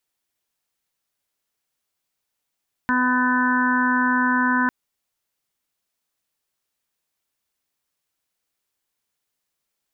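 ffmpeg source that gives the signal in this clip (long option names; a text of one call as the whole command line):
ffmpeg -f lavfi -i "aevalsrc='0.0891*sin(2*PI*251*t)+0.00944*sin(2*PI*502*t)+0.0106*sin(2*PI*753*t)+0.0794*sin(2*PI*1004*t)+0.0211*sin(2*PI*1255*t)+0.075*sin(2*PI*1506*t)+0.0501*sin(2*PI*1757*t)':duration=1.8:sample_rate=44100" out.wav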